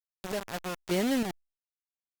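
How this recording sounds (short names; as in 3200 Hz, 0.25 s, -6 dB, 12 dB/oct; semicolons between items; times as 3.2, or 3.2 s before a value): chopped level 1.1 Hz, depth 60%, duty 35%; a quantiser's noise floor 6-bit, dither none; Opus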